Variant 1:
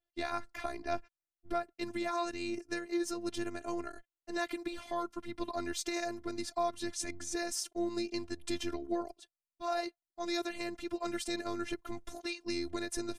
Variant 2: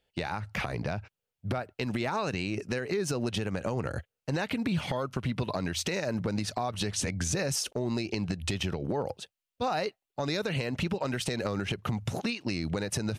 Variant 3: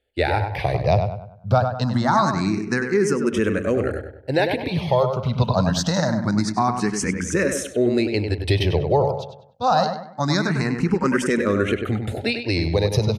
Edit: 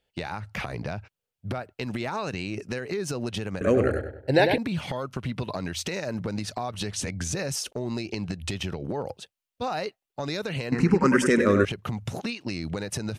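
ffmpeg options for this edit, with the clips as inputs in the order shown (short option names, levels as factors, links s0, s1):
-filter_complex "[2:a]asplit=2[s0][s1];[1:a]asplit=3[s2][s3][s4];[s2]atrim=end=3.612[s5];[s0]atrim=start=3.608:end=4.582[s6];[s3]atrim=start=4.578:end=10.722[s7];[s1]atrim=start=10.718:end=11.652[s8];[s4]atrim=start=11.648[s9];[s5][s6]acrossfade=d=0.004:c1=hsin:c2=hsin[s10];[s10][s7]acrossfade=d=0.004:c1=hsin:c2=hsin[s11];[s11][s8]acrossfade=d=0.004:c1=hsin:c2=hsin[s12];[s12][s9]acrossfade=d=0.004:c1=hsin:c2=hsin"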